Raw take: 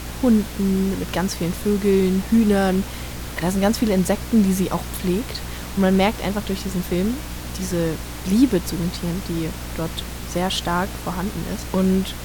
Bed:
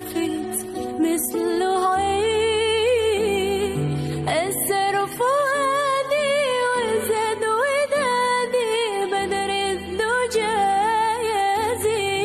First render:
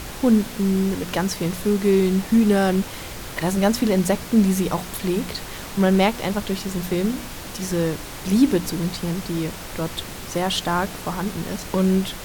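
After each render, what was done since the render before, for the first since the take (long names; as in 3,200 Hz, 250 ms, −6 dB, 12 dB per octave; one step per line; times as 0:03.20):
hum removal 60 Hz, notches 5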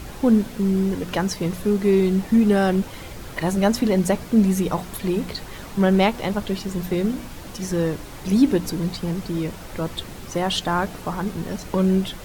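broadband denoise 7 dB, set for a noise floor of −35 dBFS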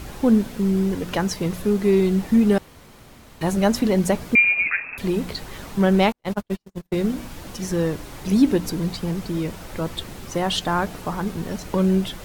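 0:02.58–0:03.41: fill with room tone
0:04.35–0:04.98: voice inversion scrambler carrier 2,600 Hz
0:06.12–0:06.98: noise gate −24 dBFS, range −48 dB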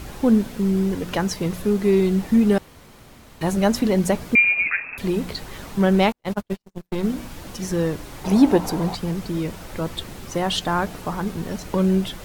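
0:06.53–0:07.03: gain on one half-wave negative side −12 dB
0:08.24–0:08.95: parametric band 800 Hz +14.5 dB 1.1 octaves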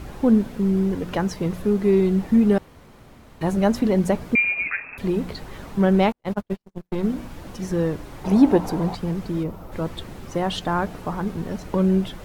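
0:09.43–0:09.72: gain on a spectral selection 1,400–11,000 Hz −9 dB
high-shelf EQ 2,500 Hz −9 dB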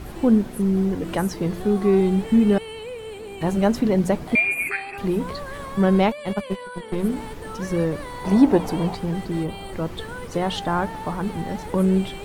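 mix in bed −15.5 dB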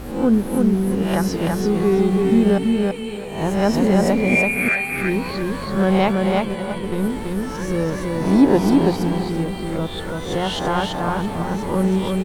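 peak hold with a rise ahead of every peak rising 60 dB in 0.58 s
repeating echo 333 ms, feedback 24%, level −3 dB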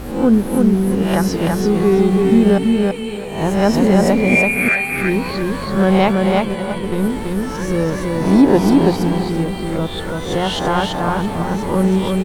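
level +3.5 dB
brickwall limiter −2 dBFS, peak gain reduction 2 dB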